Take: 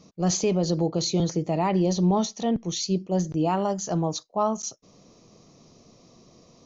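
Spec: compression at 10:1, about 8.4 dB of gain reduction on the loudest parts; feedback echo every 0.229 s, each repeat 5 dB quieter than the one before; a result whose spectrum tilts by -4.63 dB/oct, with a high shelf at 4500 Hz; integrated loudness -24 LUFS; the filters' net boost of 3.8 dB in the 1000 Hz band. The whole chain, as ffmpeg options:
-af "equalizer=f=1k:t=o:g=5,highshelf=f=4.5k:g=-3.5,acompressor=threshold=-26dB:ratio=10,aecho=1:1:229|458|687|916|1145|1374|1603:0.562|0.315|0.176|0.0988|0.0553|0.031|0.0173,volume=6dB"

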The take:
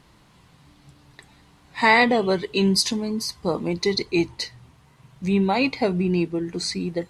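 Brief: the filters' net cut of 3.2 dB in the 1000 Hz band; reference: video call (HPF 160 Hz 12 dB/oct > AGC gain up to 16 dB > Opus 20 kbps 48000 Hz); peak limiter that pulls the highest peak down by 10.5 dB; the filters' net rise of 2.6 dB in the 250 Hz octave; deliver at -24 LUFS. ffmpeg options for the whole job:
-af "equalizer=f=250:t=o:g=5.5,equalizer=f=1k:t=o:g=-4.5,alimiter=limit=-16dB:level=0:latency=1,highpass=160,dynaudnorm=m=16dB,volume=2dB" -ar 48000 -c:a libopus -b:a 20k

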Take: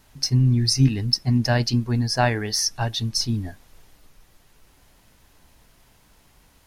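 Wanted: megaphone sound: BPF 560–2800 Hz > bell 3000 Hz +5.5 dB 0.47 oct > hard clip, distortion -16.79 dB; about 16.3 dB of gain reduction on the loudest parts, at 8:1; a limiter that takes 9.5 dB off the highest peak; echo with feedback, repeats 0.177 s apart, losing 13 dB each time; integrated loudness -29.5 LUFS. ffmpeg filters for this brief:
-af "acompressor=threshold=-31dB:ratio=8,alimiter=level_in=3dB:limit=-24dB:level=0:latency=1,volume=-3dB,highpass=560,lowpass=2.8k,equalizer=f=3k:t=o:w=0.47:g=5.5,aecho=1:1:177|354|531:0.224|0.0493|0.0108,asoftclip=type=hard:threshold=-34.5dB,volume=17dB"

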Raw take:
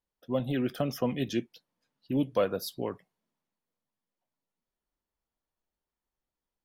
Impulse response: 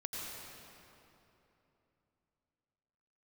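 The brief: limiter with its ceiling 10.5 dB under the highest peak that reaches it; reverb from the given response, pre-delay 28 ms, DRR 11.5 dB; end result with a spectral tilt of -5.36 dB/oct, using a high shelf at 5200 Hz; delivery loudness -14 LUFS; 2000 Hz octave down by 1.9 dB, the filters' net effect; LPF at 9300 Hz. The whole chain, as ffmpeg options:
-filter_complex "[0:a]lowpass=9.3k,equalizer=f=2k:t=o:g=-4,highshelf=f=5.2k:g=8.5,alimiter=level_in=2dB:limit=-24dB:level=0:latency=1,volume=-2dB,asplit=2[a][b];[1:a]atrim=start_sample=2205,adelay=28[c];[b][c]afir=irnorm=-1:irlink=0,volume=-12.5dB[d];[a][d]amix=inputs=2:normalize=0,volume=22.5dB"

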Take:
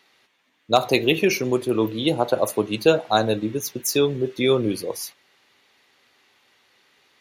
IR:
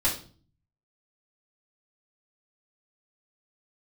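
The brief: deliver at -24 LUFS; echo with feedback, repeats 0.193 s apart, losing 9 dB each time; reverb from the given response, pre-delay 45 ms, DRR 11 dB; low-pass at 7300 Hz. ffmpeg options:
-filter_complex "[0:a]lowpass=7.3k,aecho=1:1:193|386|579|772:0.355|0.124|0.0435|0.0152,asplit=2[a][b];[1:a]atrim=start_sample=2205,adelay=45[c];[b][c]afir=irnorm=-1:irlink=0,volume=-21dB[d];[a][d]amix=inputs=2:normalize=0,volume=-3dB"

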